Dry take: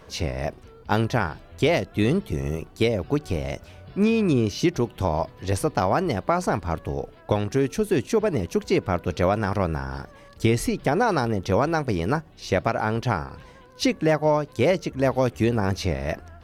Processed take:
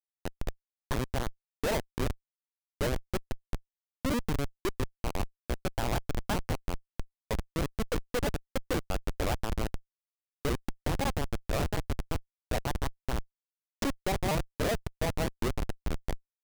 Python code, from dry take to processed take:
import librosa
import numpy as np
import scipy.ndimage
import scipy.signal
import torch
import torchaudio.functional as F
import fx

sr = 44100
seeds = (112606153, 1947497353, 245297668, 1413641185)

y = fx.pitch_ramps(x, sr, semitones=5.0, every_ms=159)
y = scipy.signal.sosfilt(scipy.signal.butter(2, 360.0, 'highpass', fs=sr, output='sos'), y)
y = fx.schmitt(y, sr, flips_db=-20.5)